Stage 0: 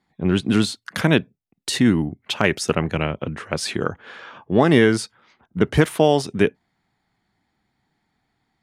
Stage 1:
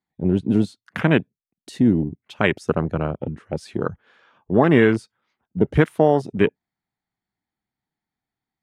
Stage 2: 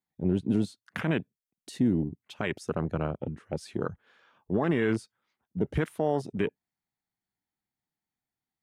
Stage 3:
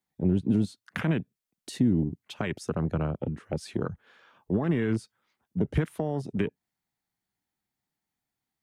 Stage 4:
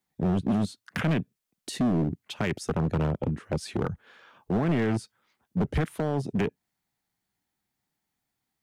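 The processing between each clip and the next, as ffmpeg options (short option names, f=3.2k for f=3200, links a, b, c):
-af "afwtdn=0.0631"
-af "highshelf=f=5.5k:g=5.5,alimiter=limit=-10dB:level=0:latency=1:release=29,volume=-6.5dB"
-filter_complex "[0:a]acrossover=split=240[a][b];[b]acompressor=threshold=-33dB:ratio=10[c];[a][c]amix=inputs=2:normalize=0,volume=4dB"
-af "asoftclip=type=hard:threshold=-25dB,volume=4dB"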